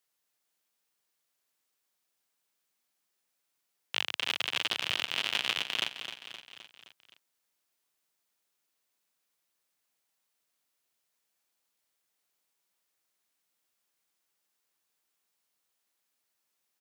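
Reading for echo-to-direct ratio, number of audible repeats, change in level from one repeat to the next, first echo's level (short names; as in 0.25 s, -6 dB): -8.5 dB, 5, -5.0 dB, -10.0 dB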